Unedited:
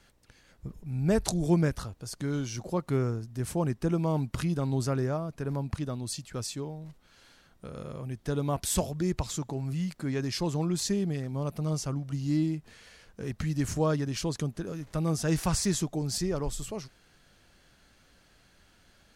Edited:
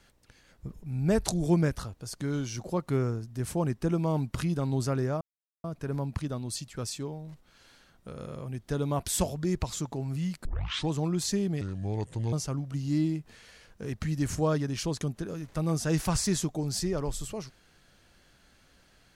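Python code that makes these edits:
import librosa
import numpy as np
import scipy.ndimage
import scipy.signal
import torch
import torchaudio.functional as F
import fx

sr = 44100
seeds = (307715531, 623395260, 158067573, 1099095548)

y = fx.edit(x, sr, fx.insert_silence(at_s=5.21, length_s=0.43),
    fx.tape_start(start_s=10.02, length_s=0.46),
    fx.speed_span(start_s=11.18, length_s=0.53, speed=0.74), tone=tone)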